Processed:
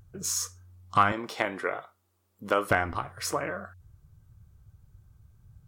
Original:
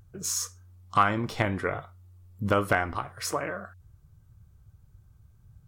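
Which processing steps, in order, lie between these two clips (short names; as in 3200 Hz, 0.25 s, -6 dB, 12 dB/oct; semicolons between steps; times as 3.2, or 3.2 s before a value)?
1.12–2.71 HPF 350 Hz 12 dB/oct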